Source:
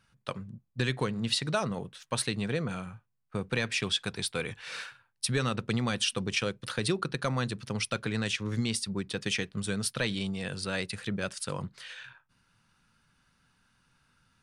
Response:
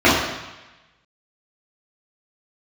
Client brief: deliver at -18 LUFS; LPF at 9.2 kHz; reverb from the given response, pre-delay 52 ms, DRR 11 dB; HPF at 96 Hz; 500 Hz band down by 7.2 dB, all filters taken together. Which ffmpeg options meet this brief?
-filter_complex "[0:a]highpass=96,lowpass=9200,equalizer=f=500:t=o:g=-9,asplit=2[s0][s1];[1:a]atrim=start_sample=2205,adelay=52[s2];[s1][s2]afir=irnorm=-1:irlink=0,volume=0.0119[s3];[s0][s3]amix=inputs=2:normalize=0,volume=5.62"

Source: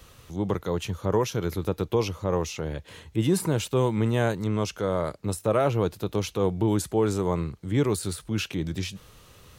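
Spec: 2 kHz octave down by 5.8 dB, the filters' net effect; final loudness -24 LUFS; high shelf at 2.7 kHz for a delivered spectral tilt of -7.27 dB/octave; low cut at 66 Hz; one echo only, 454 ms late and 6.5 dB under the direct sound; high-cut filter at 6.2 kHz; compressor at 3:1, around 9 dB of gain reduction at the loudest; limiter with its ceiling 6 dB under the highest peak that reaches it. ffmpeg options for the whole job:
-af "highpass=66,lowpass=6200,equalizer=f=2000:t=o:g=-4.5,highshelf=f=2700:g=-7.5,acompressor=threshold=0.0282:ratio=3,alimiter=level_in=1.12:limit=0.0631:level=0:latency=1,volume=0.891,aecho=1:1:454:0.473,volume=3.98"

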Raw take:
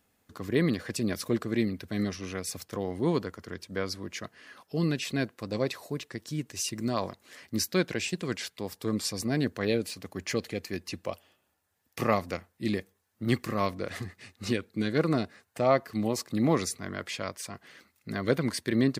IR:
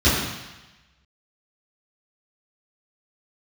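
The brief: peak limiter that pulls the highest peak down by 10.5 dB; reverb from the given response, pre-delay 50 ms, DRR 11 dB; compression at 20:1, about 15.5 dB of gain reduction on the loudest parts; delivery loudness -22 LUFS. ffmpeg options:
-filter_complex "[0:a]acompressor=threshold=0.02:ratio=20,alimiter=level_in=2.24:limit=0.0631:level=0:latency=1,volume=0.447,asplit=2[s0][s1];[1:a]atrim=start_sample=2205,adelay=50[s2];[s1][s2]afir=irnorm=-1:irlink=0,volume=0.0266[s3];[s0][s3]amix=inputs=2:normalize=0,volume=10"

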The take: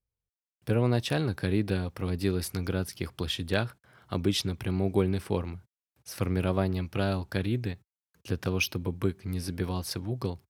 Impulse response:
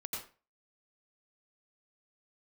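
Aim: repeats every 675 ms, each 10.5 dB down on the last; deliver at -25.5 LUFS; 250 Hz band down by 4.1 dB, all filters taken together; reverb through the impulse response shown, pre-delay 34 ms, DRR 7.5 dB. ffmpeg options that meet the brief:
-filter_complex "[0:a]equalizer=f=250:t=o:g=-6,aecho=1:1:675|1350|2025:0.299|0.0896|0.0269,asplit=2[s0][s1];[1:a]atrim=start_sample=2205,adelay=34[s2];[s1][s2]afir=irnorm=-1:irlink=0,volume=0.422[s3];[s0][s3]amix=inputs=2:normalize=0,volume=1.88"

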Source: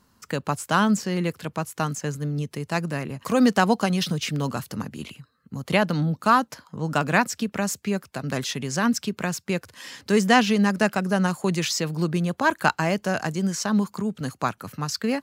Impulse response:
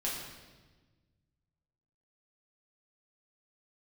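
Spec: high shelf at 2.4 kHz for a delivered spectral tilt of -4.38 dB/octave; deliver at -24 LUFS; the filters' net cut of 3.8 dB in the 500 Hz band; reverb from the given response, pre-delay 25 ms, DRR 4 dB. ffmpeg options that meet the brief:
-filter_complex "[0:a]equalizer=f=500:t=o:g=-5,highshelf=f=2400:g=3,asplit=2[s0][s1];[1:a]atrim=start_sample=2205,adelay=25[s2];[s1][s2]afir=irnorm=-1:irlink=0,volume=0.398[s3];[s0][s3]amix=inputs=2:normalize=0,volume=0.891"

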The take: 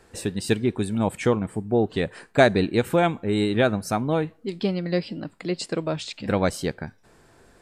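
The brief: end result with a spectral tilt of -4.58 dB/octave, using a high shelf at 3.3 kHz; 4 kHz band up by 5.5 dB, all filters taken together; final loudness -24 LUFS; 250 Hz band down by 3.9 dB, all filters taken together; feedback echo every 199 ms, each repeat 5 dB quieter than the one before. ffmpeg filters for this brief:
-af "equalizer=f=250:t=o:g=-5.5,highshelf=f=3300:g=3.5,equalizer=f=4000:t=o:g=4,aecho=1:1:199|398|597|796|995|1194|1393:0.562|0.315|0.176|0.0988|0.0553|0.031|0.0173"

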